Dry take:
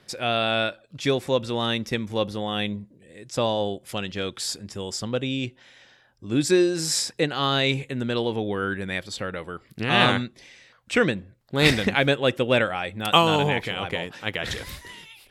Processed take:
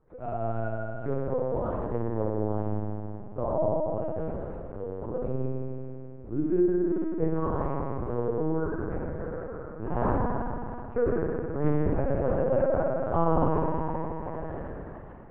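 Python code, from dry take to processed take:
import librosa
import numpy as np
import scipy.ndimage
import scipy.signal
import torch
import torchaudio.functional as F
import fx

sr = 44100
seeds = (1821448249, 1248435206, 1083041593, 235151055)

y = fx.cvsd(x, sr, bps=64000)
y = scipy.signal.sosfilt(scipy.signal.butter(4, 1100.0, 'lowpass', fs=sr, output='sos'), y)
y = fx.comb_fb(y, sr, f0_hz=160.0, decay_s=0.46, harmonics='all', damping=0.0, mix_pct=80)
y = fx.rev_spring(y, sr, rt60_s=3.0, pass_ms=(53,), chirp_ms=50, drr_db=-3.5)
y = fx.lpc_vocoder(y, sr, seeds[0], excitation='pitch_kept', order=8)
y = F.gain(torch.from_numpy(y), 4.0).numpy()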